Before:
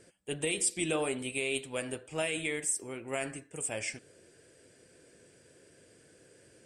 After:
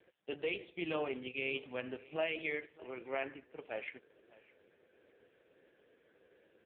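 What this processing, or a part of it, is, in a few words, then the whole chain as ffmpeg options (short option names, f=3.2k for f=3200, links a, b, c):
satellite phone: -filter_complex "[0:a]asettb=1/sr,asplit=3[a][b][c];[a]atrim=end=0.444[d];[b]atrim=start=0.44:end=2.16,asetpts=PTS-STARTPTS,afade=t=in:d=0.004:c=qsin,afade=t=out:st=1.716:d=0.004:c=qsin,asubboost=boost=8:cutoff=210[e];[c]atrim=start=2.156[f];[d][e]acrossfade=d=0.004:c1=hsin:c2=qsin[g];[g][f]acrossfade=d=0.004:c1=qsin:c2=hsin,highpass=330,lowpass=3.3k,aecho=1:1:604:0.0841,volume=-1dB" -ar 8000 -c:a libopencore_amrnb -b:a 4750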